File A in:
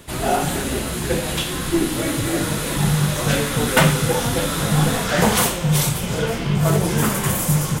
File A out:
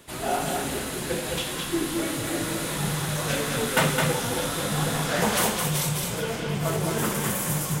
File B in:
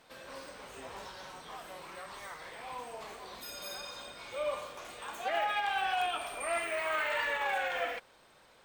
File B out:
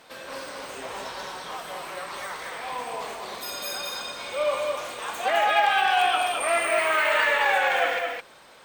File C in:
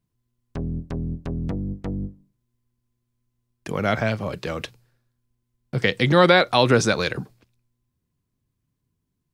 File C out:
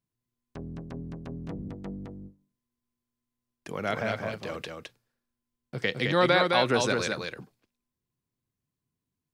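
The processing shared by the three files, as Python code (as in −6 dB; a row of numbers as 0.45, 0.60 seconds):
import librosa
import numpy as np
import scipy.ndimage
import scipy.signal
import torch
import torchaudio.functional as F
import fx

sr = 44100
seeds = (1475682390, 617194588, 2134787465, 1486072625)

y = fx.low_shelf(x, sr, hz=140.0, db=-9.5)
y = y + 10.0 ** (-4.0 / 20.0) * np.pad(y, (int(213 * sr / 1000.0), 0))[:len(y)]
y = y * 10.0 ** (-9 / 20.0) / np.max(np.abs(y))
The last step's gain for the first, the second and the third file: −6.5, +9.5, −7.0 decibels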